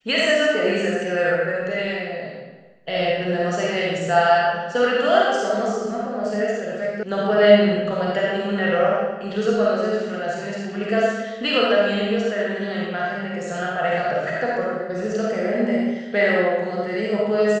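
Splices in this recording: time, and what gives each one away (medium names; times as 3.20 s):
7.03 s: sound stops dead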